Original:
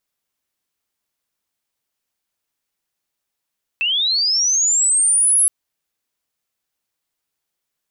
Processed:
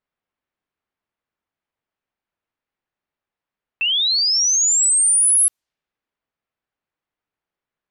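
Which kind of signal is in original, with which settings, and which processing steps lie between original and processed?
glide linear 2,600 Hz → 11,000 Hz −16 dBFS → −11 dBFS 1.67 s
low-pass that shuts in the quiet parts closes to 2,100 Hz, open at −16.5 dBFS

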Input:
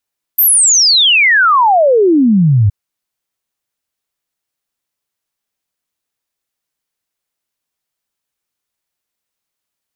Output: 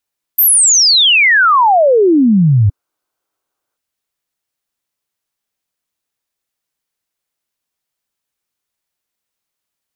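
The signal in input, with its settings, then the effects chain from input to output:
exponential sine sweep 14,000 Hz → 95 Hz 2.32 s −6 dBFS
gain on a spectral selection 0:02.64–0:03.77, 260–1,600 Hz +9 dB

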